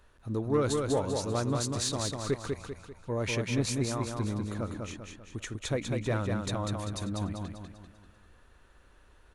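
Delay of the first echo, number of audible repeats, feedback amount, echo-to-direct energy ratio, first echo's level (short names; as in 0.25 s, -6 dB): 0.196 s, 5, 45%, -3.0 dB, -4.0 dB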